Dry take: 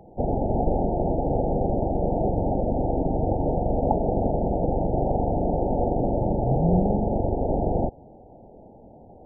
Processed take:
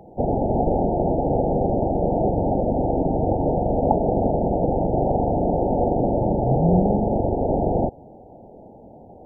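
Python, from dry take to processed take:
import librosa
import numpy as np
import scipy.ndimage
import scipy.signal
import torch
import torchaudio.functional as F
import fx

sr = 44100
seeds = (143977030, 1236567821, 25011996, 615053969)

y = fx.low_shelf(x, sr, hz=62.0, db=-8.0)
y = y * 10.0 ** (4.0 / 20.0)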